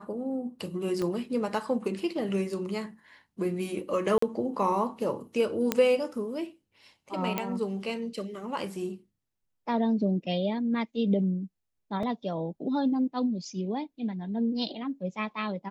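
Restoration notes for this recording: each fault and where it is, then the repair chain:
0:01.02: click −20 dBFS
0:04.18–0:04.22: drop-out 44 ms
0:05.72: click −9 dBFS
0:07.38: click −14 dBFS
0:12.03: drop-out 3.2 ms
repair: click removal
repair the gap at 0:04.18, 44 ms
repair the gap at 0:12.03, 3.2 ms

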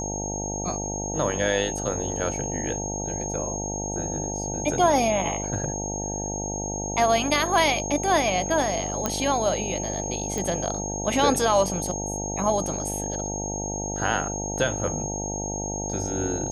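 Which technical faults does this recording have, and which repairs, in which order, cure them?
mains buzz 50 Hz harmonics 18 −32 dBFS
whistle 6,500 Hz −31 dBFS
0:09.06: click −9 dBFS
0:10.38: click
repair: click removal
hum removal 50 Hz, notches 18
notch filter 6,500 Hz, Q 30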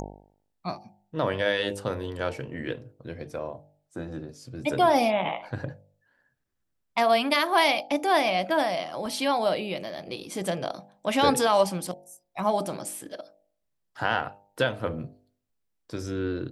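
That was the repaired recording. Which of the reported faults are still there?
none of them is left

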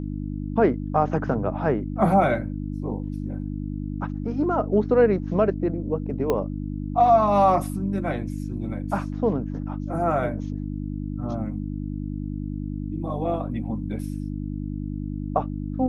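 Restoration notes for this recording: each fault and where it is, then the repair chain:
mains hum 50 Hz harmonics 6 −30 dBFS
0:06.30: click −11 dBFS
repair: click removal
hum removal 50 Hz, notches 6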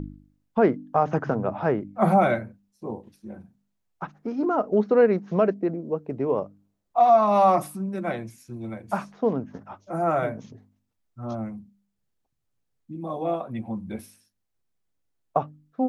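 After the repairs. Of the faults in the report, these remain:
0:06.30: click

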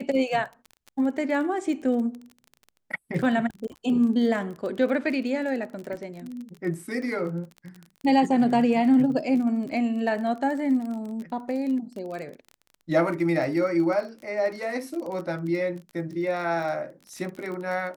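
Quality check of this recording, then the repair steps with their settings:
surface crackle 29 per second −33 dBFS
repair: click removal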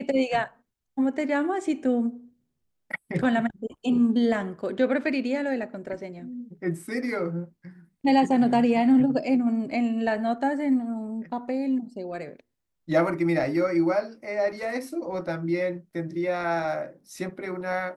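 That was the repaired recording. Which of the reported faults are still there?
none of them is left

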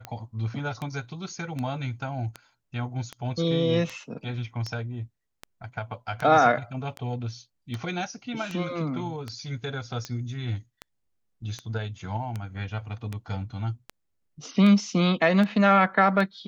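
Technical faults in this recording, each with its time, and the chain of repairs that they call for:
scratch tick 78 rpm −19 dBFS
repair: click removal

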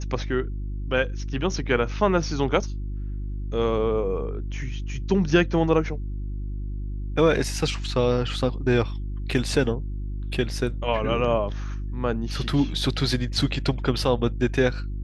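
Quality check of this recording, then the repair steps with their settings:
mains hum 50 Hz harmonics 7 −30 dBFS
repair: hum removal 50 Hz, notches 7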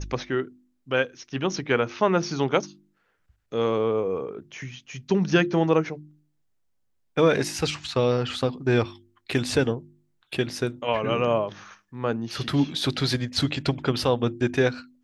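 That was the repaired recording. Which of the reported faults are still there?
none of them is left

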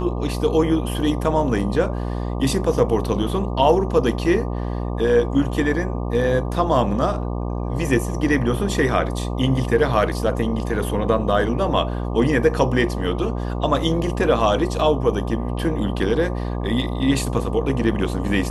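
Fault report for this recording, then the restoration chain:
mains buzz 60 Hz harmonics 20 −25 dBFS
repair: hum removal 60 Hz, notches 20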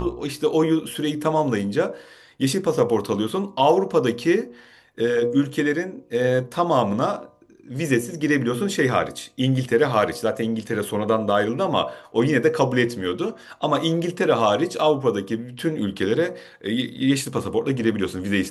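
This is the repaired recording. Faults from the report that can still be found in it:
none of them is left

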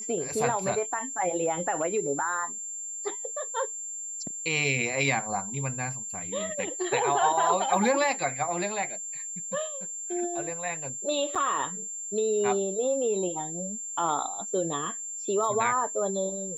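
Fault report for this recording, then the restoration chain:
whistle 7,300 Hz −34 dBFS
0:11.35–0:11.36: drop-out 5.6 ms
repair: notch filter 7,300 Hz, Q 30
repair the gap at 0:11.35, 5.6 ms

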